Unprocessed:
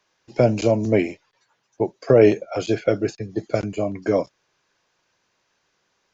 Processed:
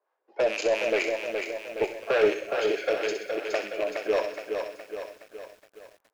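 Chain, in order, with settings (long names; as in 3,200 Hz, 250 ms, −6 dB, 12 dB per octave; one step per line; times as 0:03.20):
loose part that buzzes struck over −25 dBFS, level −18 dBFS
low-pass that shuts in the quiet parts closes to 890 Hz, open at −14.5 dBFS
high-pass filter 450 Hz 24 dB per octave
in parallel at −2 dB: output level in coarse steps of 23 dB
on the sum: soft clipping −15 dBFS, distortion −10 dB
two-band tremolo in antiphase 4.4 Hz, depth 70%, crossover 630 Hz
delay with a high-pass on its return 64 ms, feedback 50%, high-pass 1,400 Hz, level −7.5 dB
on a send at −14 dB: convolution reverb RT60 1.4 s, pre-delay 9 ms
on the sum: feedback echo at a low word length 418 ms, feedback 55%, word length 9 bits, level −5.5 dB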